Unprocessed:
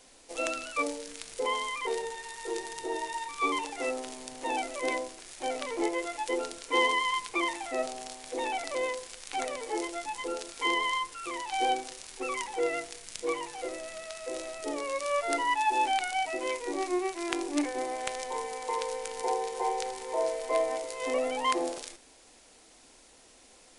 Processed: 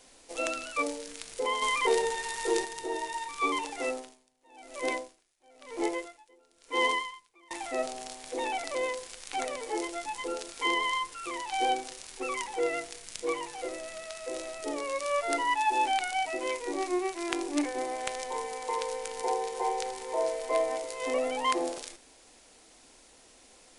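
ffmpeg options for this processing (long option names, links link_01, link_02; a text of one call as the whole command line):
ffmpeg -i in.wav -filter_complex "[0:a]asettb=1/sr,asplit=3[link_01][link_02][link_03];[link_01]atrim=end=1.624[link_04];[link_02]atrim=start=1.62:end=2.65,asetpts=PTS-STARTPTS,afade=type=in:duration=0.004:curve=qsin,afade=type=out:start_time=1.026:duration=0.004:curve=qsin,acontrast=70[link_05];[link_03]atrim=start=2.646[link_06];[link_04][link_05]acrossfade=duration=0.004:curve1=hsin:curve2=qsin[link_07];[link_07][link_06]acrossfade=duration=0.004:curve1=qsin:curve2=hsin,asettb=1/sr,asplit=3[link_08][link_09][link_10];[link_08]atrim=end=3.884[link_11];[link_09]atrim=start=3.88:end=7.51,asetpts=PTS-STARTPTS,afade=type=in:duration=0.004:curve=qsin,afade=type=out:start_time=3.626:duration=0.004:curve=qsin,aeval=exprs='val(0)*pow(10,-31*(0.5-0.5*cos(2*PI*1*n/s))/20)':channel_layout=same[link_12];[link_10]atrim=start=7.506[link_13];[link_11][link_12]acrossfade=duration=0.004:curve1=hsin:curve2=qsin[link_14];[link_14][link_13]acrossfade=duration=0.004:curve1=qsin:curve2=hsin" out.wav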